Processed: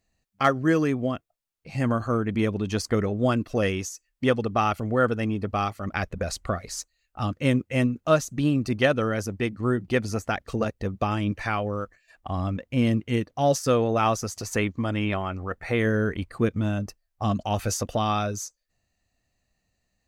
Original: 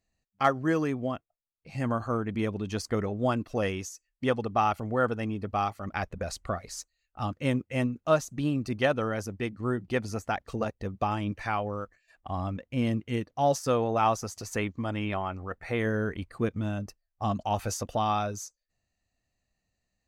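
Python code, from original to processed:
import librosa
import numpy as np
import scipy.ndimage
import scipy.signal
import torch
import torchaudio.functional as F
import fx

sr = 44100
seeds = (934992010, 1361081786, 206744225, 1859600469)

y = fx.dynamic_eq(x, sr, hz=860.0, q=2.0, threshold_db=-42.0, ratio=4.0, max_db=-7)
y = y * librosa.db_to_amplitude(5.5)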